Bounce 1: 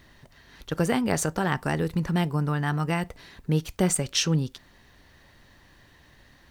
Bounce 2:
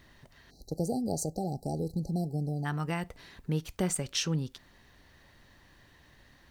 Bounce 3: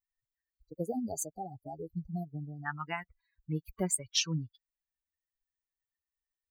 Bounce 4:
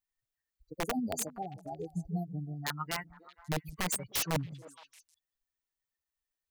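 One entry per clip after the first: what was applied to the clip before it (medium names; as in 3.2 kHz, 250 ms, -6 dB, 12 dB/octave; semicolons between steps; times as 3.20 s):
spectral selection erased 0.51–2.65 s, 840–3900 Hz; in parallel at -2.5 dB: compression, threshold -31 dBFS, peak gain reduction 13.5 dB; on the sum: trim -8.5 dB
expander on every frequency bin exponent 3; bass shelf 480 Hz -5.5 dB; trim +5 dB
integer overflow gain 26.5 dB; repeats whose band climbs or falls 156 ms, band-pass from 160 Hz, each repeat 1.4 oct, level -11 dB; trim +1.5 dB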